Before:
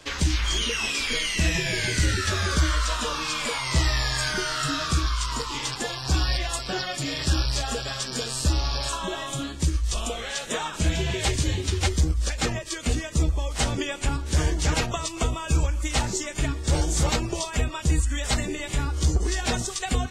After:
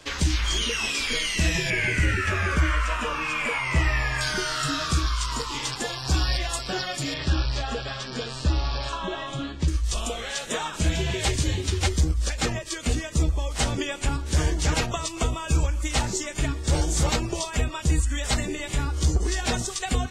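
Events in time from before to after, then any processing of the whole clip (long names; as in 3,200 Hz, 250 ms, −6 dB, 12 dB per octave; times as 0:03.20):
0:01.70–0:04.21: high shelf with overshoot 3,100 Hz −7.5 dB, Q 3
0:07.14–0:09.68: low-pass filter 3,800 Hz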